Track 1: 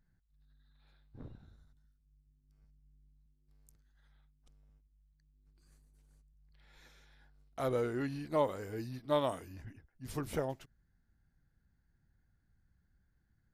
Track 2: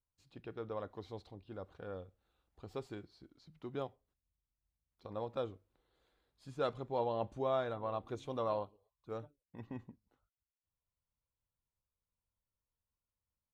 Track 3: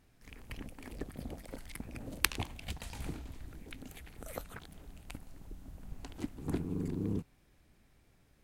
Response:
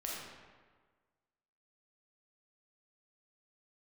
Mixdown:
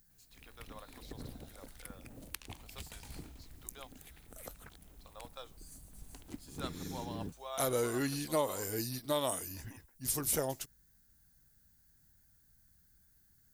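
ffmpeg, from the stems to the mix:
-filter_complex "[0:a]bass=f=250:g=-2,treble=f=4k:g=13,volume=3dB[a];[1:a]highpass=670,aemphasis=mode=production:type=riaa,volume=-5.5dB[b];[2:a]adelay=100,volume=-7.5dB[c];[a][b][c]amix=inputs=3:normalize=0,highshelf=f=5.8k:g=9,alimiter=limit=-20dB:level=0:latency=1:release=279"

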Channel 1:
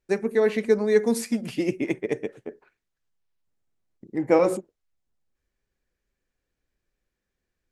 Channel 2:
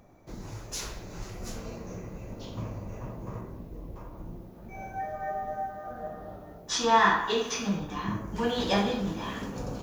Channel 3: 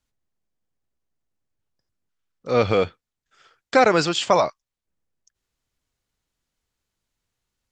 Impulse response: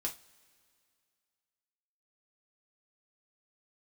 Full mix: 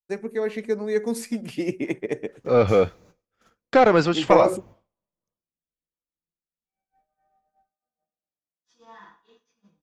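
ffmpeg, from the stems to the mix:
-filter_complex "[0:a]dynaudnorm=f=870:g=3:m=10dB,volume=-5.5dB[a];[1:a]highpass=f=44:w=0.5412,highpass=f=44:w=1.3066,adelay=1950,volume=-14.5dB,asplit=2[b][c];[c]volume=-13.5dB[d];[2:a]lowpass=f=1.5k:p=1,asoftclip=type=tanh:threshold=-11dB,volume=2.5dB,asplit=3[e][f][g];[f]volume=-18dB[h];[g]apad=whole_len=519491[i];[b][i]sidechaingate=range=-33dB:threshold=-54dB:ratio=16:detection=peak[j];[3:a]atrim=start_sample=2205[k];[d][h]amix=inputs=2:normalize=0[l];[l][k]afir=irnorm=-1:irlink=0[m];[a][j][e][m]amix=inputs=4:normalize=0,agate=range=-33dB:threshold=-47dB:ratio=3:detection=peak"

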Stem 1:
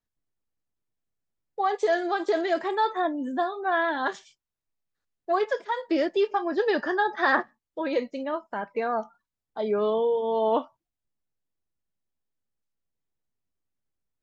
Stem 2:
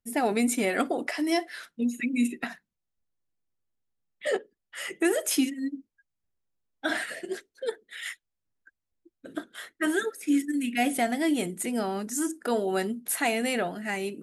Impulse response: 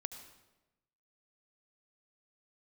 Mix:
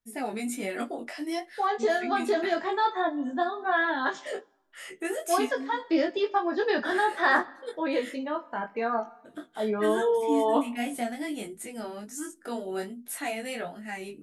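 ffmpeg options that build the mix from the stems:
-filter_complex "[0:a]equalizer=f=480:w=1.5:g=-3.5,volume=1.5dB,asplit=2[a][b];[b]volume=-9.5dB[c];[1:a]flanger=delay=8.2:depth=5.7:regen=34:speed=1.3:shape=sinusoidal,volume=0dB[d];[2:a]atrim=start_sample=2205[e];[c][e]afir=irnorm=-1:irlink=0[f];[a][d][f]amix=inputs=3:normalize=0,flanger=delay=18.5:depth=3:speed=0.51"

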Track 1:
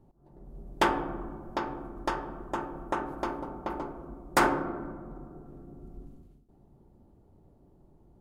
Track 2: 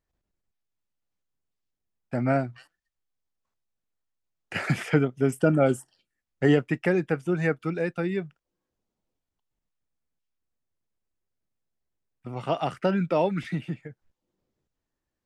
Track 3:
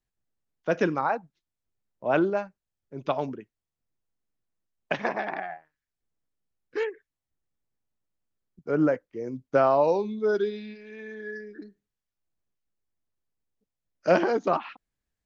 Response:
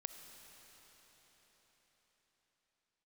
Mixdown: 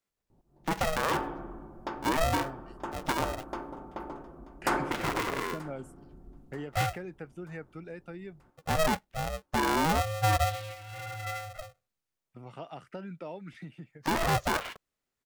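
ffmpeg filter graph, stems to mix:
-filter_complex "[0:a]adelay=300,volume=-5dB,asplit=2[a][b];[b]volume=-20.5dB[c];[1:a]acompressor=threshold=-33dB:ratio=2,adelay=100,volume=-10dB[d];[2:a]highpass=f=190:p=1,aeval=exprs='val(0)*sgn(sin(2*PI*320*n/s))':c=same,volume=1.5dB[e];[c]aecho=0:1:933|1866|2799|3732|4665|5598:1|0.46|0.212|0.0973|0.0448|0.0206[f];[a][d][e][f]amix=inputs=4:normalize=0,alimiter=limit=-18.5dB:level=0:latency=1:release=57"

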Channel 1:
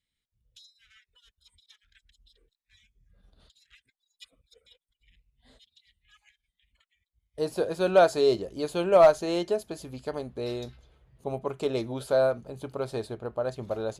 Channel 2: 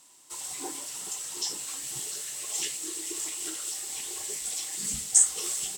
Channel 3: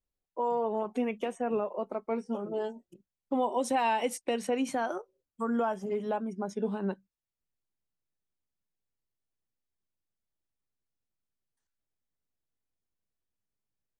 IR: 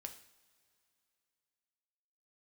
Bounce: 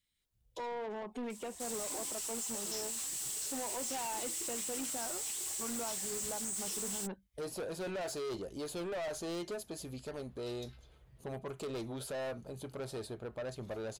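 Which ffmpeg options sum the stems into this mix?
-filter_complex "[0:a]volume=-1dB[a];[1:a]adelay=1300,volume=1.5dB[b];[2:a]adelay=200,volume=-0.5dB[c];[a][b]amix=inputs=2:normalize=0,highshelf=f=5.4k:g=7,alimiter=limit=-19dB:level=0:latency=1:release=27,volume=0dB[d];[c][d]amix=inputs=2:normalize=0,asoftclip=type=tanh:threshold=-32dB,alimiter=level_in=12dB:limit=-24dB:level=0:latency=1:release=308,volume=-12dB"

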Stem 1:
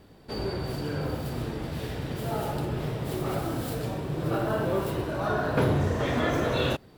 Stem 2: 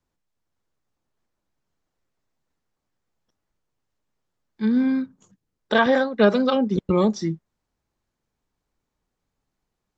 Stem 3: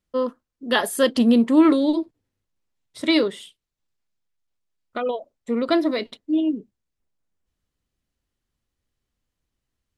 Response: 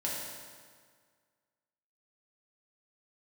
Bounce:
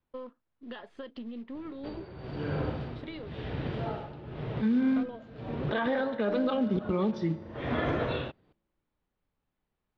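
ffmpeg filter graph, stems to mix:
-filter_complex "[0:a]tremolo=f=0.95:d=0.81,adelay=1550,volume=-0.5dB[a];[1:a]flanger=delay=0.7:depth=4.4:regen=-78:speed=1.7:shape=sinusoidal,volume=-0.5dB,asplit=3[b][c][d];[c]volume=-18dB[e];[2:a]aeval=exprs='if(lt(val(0),0),0.708*val(0),val(0))':c=same,alimiter=limit=-16.5dB:level=0:latency=1:release=436,acompressor=threshold=-28dB:ratio=5,volume=-10.5dB[f];[d]apad=whole_len=375955[g];[a][g]sidechaincompress=threshold=-45dB:ratio=4:attack=29:release=364[h];[3:a]atrim=start_sample=2205[i];[e][i]afir=irnorm=-1:irlink=0[j];[h][b][f][j]amix=inputs=4:normalize=0,acrusher=bits=6:mode=log:mix=0:aa=0.000001,lowpass=f=3.6k:w=0.5412,lowpass=f=3.6k:w=1.3066,alimiter=limit=-20dB:level=0:latency=1:release=58"

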